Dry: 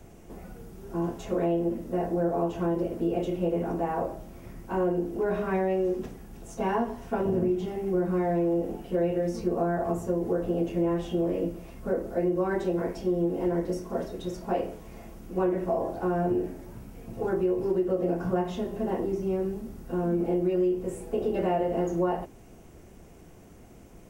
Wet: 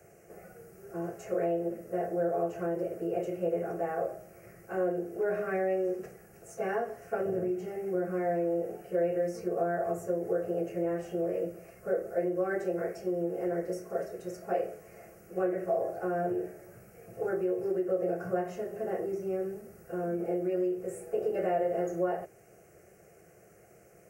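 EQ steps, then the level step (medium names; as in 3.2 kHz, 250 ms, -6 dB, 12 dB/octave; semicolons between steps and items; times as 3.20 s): high-pass 170 Hz 12 dB/octave; static phaser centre 960 Hz, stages 6; 0.0 dB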